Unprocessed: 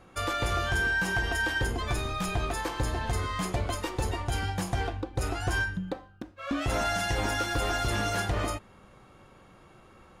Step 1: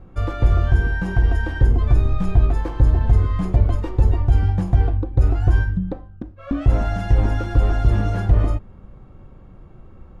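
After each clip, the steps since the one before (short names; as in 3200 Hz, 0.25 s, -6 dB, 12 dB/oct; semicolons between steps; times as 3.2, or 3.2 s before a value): tilt -4.5 dB/oct; gain -1 dB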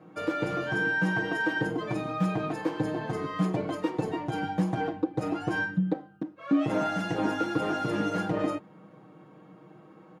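HPF 190 Hz 24 dB/oct; comb 6.4 ms, depth 88%; gain -2 dB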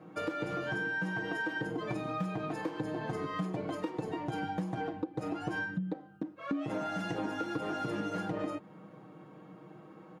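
compressor, threshold -32 dBFS, peak gain reduction 12 dB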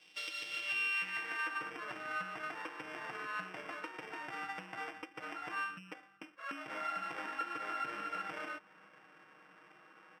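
sample sorter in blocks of 16 samples; band-pass sweep 3700 Hz -> 1400 Hz, 0.42–1.58; gain +4.5 dB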